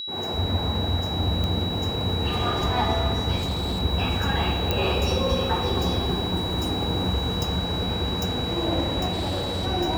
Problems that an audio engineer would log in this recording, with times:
whine 3.9 kHz -30 dBFS
1.44 s: pop -15 dBFS
3.36–3.82 s: clipped -22.5 dBFS
4.71 s: pop -9 dBFS
9.12–9.67 s: clipped -23.5 dBFS

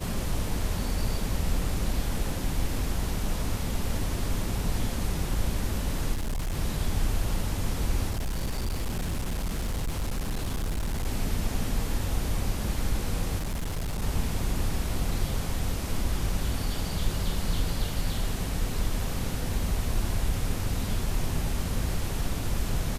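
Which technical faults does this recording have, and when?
6.14–6.58 s: clipped -26 dBFS
8.10–11.07 s: clipped -25.5 dBFS
13.38–14.03 s: clipped -27 dBFS

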